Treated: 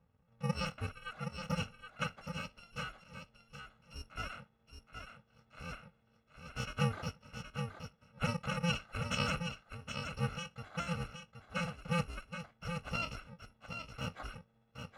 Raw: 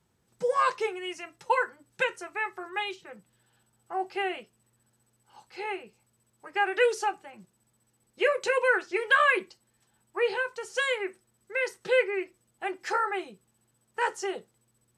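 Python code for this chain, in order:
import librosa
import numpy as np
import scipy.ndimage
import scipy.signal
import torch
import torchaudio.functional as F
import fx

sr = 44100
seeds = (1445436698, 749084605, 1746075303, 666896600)

y = fx.bit_reversed(x, sr, seeds[0], block=128)
y = scipy.signal.sosfilt(scipy.signal.butter(2, 1400.0, 'lowpass', fs=sr, output='sos'), y)
y = y + 10.0 ** (-7.0 / 20.0) * np.pad(y, (int(771 * sr / 1000.0), 0))[:len(y)]
y = y * 10.0 ** (4.5 / 20.0)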